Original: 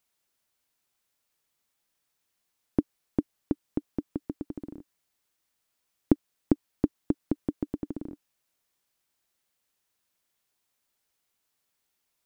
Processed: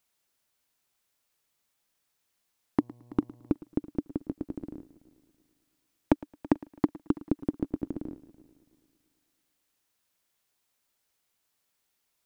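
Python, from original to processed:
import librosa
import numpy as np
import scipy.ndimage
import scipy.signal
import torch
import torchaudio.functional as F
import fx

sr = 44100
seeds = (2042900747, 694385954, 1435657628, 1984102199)

y = np.minimum(x, 2.0 * 10.0 ** (-12.5 / 20.0) - x)
y = fx.dmg_buzz(y, sr, base_hz=120.0, harmonics=9, level_db=-58.0, tilt_db=-8, odd_only=False, at=(2.79, 3.52), fade=0.02)
y = fx.echo_heads(y, sr, ms=110, heads='first and third', feedback_pct=46, wet_db=-21)
y = y * librosa.db_to_amplitude(1.0)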